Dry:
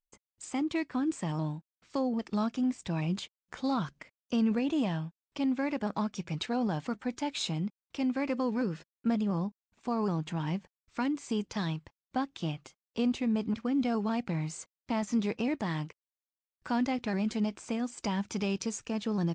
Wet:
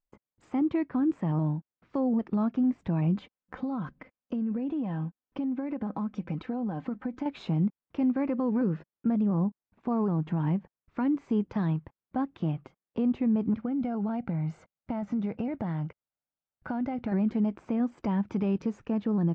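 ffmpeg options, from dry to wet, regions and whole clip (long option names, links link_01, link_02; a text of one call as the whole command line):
ffmpeg -i in.wav -filter_complex "[0:a]asettb=1/sr,asplit=3[link_01][link_02][link_03];[link_01]atrim=end=3.154[link_04];[link_02]atrim=start=3.15:end=7.26,asetpts=PTS-STARTPTS,afade=type=in:duration=0.004:curve=qsin,afade=type=out:start_time=4.106:duration=0.004:curve=qsin,aecho=1:1:3.9:0.47,atrim=end_sample=181251,acompressor=threshold=-34dB:ratio=16:attack=3.2:release=140:knee=1:detection=peak[link_05];[link_03]atrim=start=7.256[link_06];[link_04][link_05]acrossfade=duration=0.004:curve1=hsin:curve2=qsin[link_07];[link_07][link_06]acrossfade=duration=0.004:curve1=qsin:curve2=hsin,asettb=1/sr,asplit=3[link_08][link_09][link_10];[link_08]atrim=end=13.594[link_11];[link_09]atrim=start=13.59:end=17.12,asetpts=PTS-STARTPTS,afade=type=in:duration=0.004:curve=qsin,afade=type=out:start_time=3.526:duration=0.004:curve=qsin,aecho=1:1:1.4:0.37,atrim=end_sample=155673,acompressor=threshold=-33dB:ratio=10:attack=3.2:release=140:knee=1:detection=peak[link_12];[link_10]atrim=start=17.116[link_13];[link_11][link_12]acrossfade=duration=0.004:curve1=hsin:curve2=qsin[link_14];[link_14][link_13]acrossfade=duration=0.004:curve1=qsin:curve2=hsin,lowpass=1500,equalizer=frequency=180:width_type=o:width=2.5:gain=5,alimiter=limit=-22.5dB:level=0:latency=1:release=123,volume=3dB" out.wav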